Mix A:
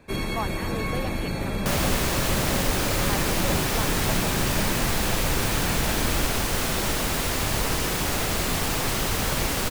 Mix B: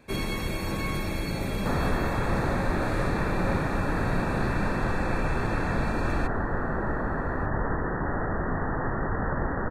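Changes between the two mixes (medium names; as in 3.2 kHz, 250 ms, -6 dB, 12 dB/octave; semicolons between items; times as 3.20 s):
speech: muted; second sound: add Chebyshev low-pass 1.9 kHz, order 10; reverb: off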